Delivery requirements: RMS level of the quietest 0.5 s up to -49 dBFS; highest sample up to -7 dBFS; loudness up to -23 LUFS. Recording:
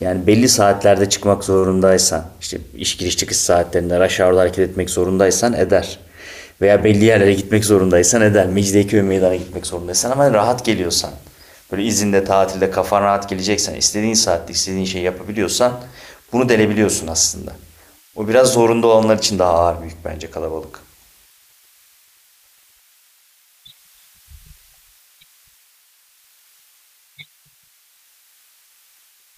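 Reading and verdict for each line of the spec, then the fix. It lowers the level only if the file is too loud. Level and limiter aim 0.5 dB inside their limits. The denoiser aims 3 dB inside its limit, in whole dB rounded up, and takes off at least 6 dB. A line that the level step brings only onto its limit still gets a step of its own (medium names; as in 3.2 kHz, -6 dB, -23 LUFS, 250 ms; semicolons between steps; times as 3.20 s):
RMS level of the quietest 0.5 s -55 dBFS: pass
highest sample -2.0 dBFS: fail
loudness -15.5 LUFS: fail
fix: trim -8 dB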